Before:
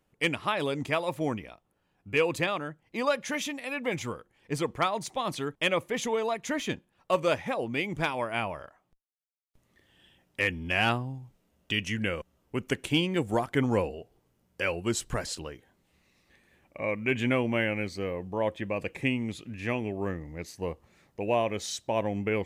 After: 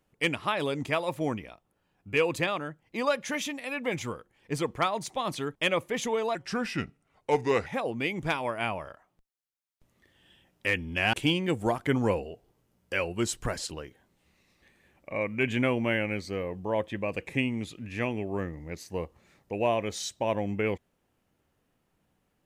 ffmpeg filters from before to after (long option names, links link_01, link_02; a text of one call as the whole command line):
ffmpeg -i in.wav -filter_complex "[0:a]asplit=4[link_01][link_02][link_03][link_04];[link_01]atrim=end=6.354[link_05];[link_02]atrim=start=6.35:end=7.4,asetpts=PTS-STARTPTS,asetrate=35280,aresample=44100,atrim=end_sample=57881,asetpts=PTS-STARTPTS[link_06];[link_03]atrim=start=7.396:end=10.872[link_07];[link_04]atrim=start=12.808[link_08];[link_05][link_06]acrossfade=duration=0.004:curve1=hsin:curve2=hsin[link_09];[link_09][link_07]acrossfade=duration=0.004:curve1=hsin:curve2=hsin[link_10];[link_10][link_08]acrossfade=duration=0.004:curve1=hsin:curve2=hsin" out.wav